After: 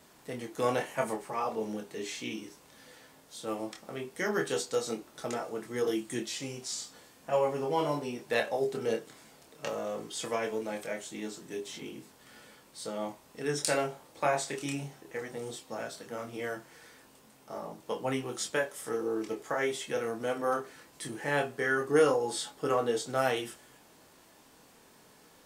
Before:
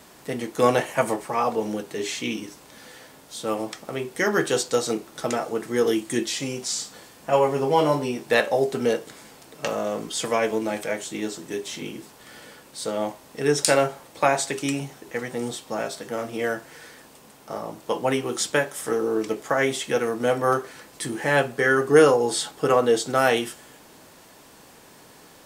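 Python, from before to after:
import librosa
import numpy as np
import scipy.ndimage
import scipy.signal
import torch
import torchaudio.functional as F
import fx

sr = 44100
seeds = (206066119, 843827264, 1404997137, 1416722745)

y = fx.chorus_voices(x, sr, voices=2, hz=0.17, base_ms=25, depth_ms=2.6, mix_pct=35)
y = y * 10.0 ** (-6.5 / 20.0)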